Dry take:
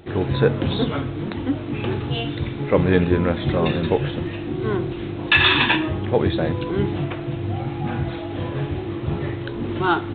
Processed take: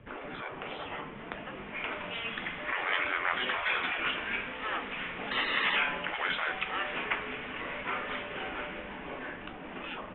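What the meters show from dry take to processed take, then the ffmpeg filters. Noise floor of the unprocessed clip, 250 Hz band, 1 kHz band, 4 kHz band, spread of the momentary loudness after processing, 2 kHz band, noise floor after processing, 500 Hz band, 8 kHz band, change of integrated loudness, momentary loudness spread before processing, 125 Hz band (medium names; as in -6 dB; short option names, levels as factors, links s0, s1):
-30 dBFS, -21.5 dB, -7.0 dB, -9.5 dB, 12 LU, -5.5 dB, -44 dBFS, -17.5 dB, no reading, -11.0 dB, 10 LU, -29.0 dB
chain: -filter_complex "[0:a]bandreject=f=50:t=h:w=6,bandreject=f=100:t=h:w=6,bandreject=f=150:t=h:w=6,bandreject=f=200:t=h:w=6,bandreject=f=250:t=h:w=6,afftfilt=real='re*lt(hypot(re,im),0.126)':imag='im*lt(hypot(re,im),0.126)':win_size=1024:overlap=0.75,acrossover=split=250|1400[s0][s1][s2];[s0]alimiter=level_in=8.41:limit=0.0631:level=0:latency=1:release=17,volume=0.119[s3];[s2]dynaudnorm=f=490:g=9:m=4.22[s4];[s3][s1][s4]amix=inputs=3:normalize=0,flanger=delay=7.2:depth=3.5:regen=-71:speed=0.34:shape=sinusoidal,highpass=f=240:t=q:w=0.5412,highpass=f=240:t=q:w=1.307,lowpass=f=3100:t=q:w=0.5176,lowpass=f=3100:t=q:w=0.7071,lowpass=f=3100:t=q:w=1.932,afreqshift=-240"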